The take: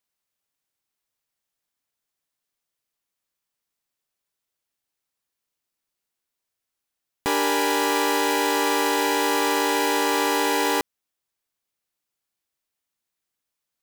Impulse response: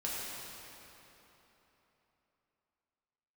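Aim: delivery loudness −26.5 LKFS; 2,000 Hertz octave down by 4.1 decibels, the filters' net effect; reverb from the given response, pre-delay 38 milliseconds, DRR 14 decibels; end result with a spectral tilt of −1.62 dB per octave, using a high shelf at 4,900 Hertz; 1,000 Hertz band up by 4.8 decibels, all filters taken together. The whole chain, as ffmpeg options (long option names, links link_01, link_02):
-filter_complex "[0:a]equalizer=frequency=1000:width_type=o:gain=7,equalizer=frequency=2000:width_type=o:gain=-6.5,highshelf=frequency=4900:gain=-6,asplit=2[link_01][link_02];[1:a]atrim=start_sample=2205,adelay=38[link_03];[link_02][link_03]afir=irnorm=-1:irlink=0,volume=-18.5dB[link_04];[link_01][link_04]amix=inputs=2:normalize=0,volume=-6.5dB"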